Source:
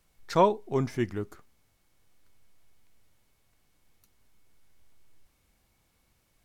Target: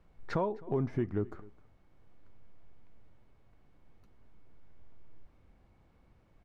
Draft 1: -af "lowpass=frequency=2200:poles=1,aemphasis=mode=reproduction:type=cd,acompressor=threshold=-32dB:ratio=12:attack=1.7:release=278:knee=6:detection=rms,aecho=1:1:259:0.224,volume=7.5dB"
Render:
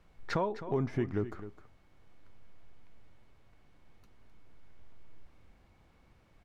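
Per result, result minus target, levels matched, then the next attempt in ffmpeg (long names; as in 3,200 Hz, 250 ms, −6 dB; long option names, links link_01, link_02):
echo-to-direct +9 dB; 2,000 Hz band +4.5 dB
-af "lowpass=frequency=2200:poles=1,aemphasis=mode=reproduction:type=cd,acompressor=threshold=-32dB:ratio=12:attack=1.7:release=278:knee=6:detection=rms,aecho=1:1:259:0.0794,volume=7.5dB"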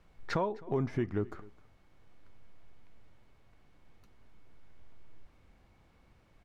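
2,000 Hz band +4.0 dB
-af "lowpass=frequency=860:poles=1,aemphasis=mode=reproduction:type=cd,acompressor=threshold=-32dB:ratio=12:attack=1.7:release=278:knee=6:detection=rms,aecho=1:1:259:0.0794,volume=7.5dB"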